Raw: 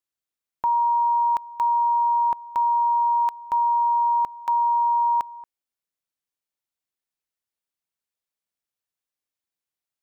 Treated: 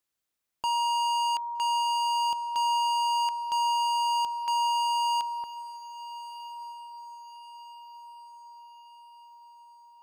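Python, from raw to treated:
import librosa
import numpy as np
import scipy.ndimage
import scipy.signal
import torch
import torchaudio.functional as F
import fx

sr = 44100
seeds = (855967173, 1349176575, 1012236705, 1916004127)

y = np.clip(x, -10.0 ** (-31.0 / 20.0), 10.0 ** (-31.0 / 20.0))
y = fx.echo_diffused(y, sr, ms=1237, feedback_pct=50, wet_db=-15.5)
y = y * 10.0 ** (5.0 / 20.0)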